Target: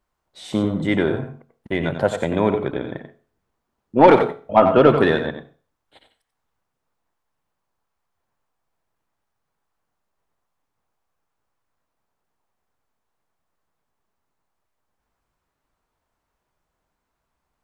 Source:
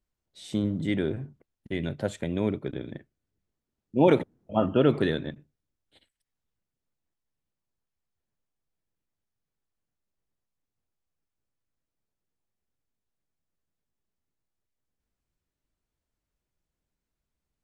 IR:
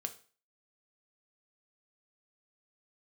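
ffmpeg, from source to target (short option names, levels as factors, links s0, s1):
-filter_complex "[0:a]equalizer=f=980:w=0.72:g=14,acontrast=42,asplit=2[s0][s1];[1:a]atrim=start_sample=2205,adelay=90[s2];[s1][s2]afir=irnorm=-1:irlink=0,volume=0.447[s3];[s0][s3]amix=inputs=2:normalize=0,volume=0.841"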